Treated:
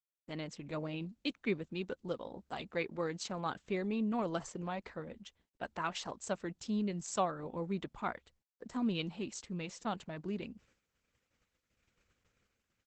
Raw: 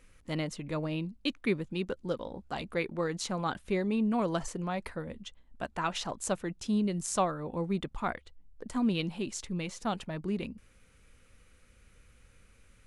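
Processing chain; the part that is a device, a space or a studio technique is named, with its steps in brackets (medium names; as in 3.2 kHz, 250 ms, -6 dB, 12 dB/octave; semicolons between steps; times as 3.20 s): video call (high-pass 130 Hz 6 dB/octave; level rider gain up to 3.5 dB; gate -59 dBFS, range -35 dB; trim -7.5 dB; Opus 12 kbps 48 kHz)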